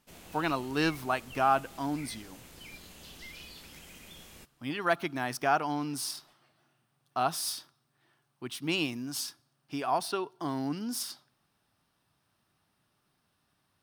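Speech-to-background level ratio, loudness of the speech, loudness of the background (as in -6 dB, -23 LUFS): 16.0 dB, -32.0 LUFS, -48.0 LUFS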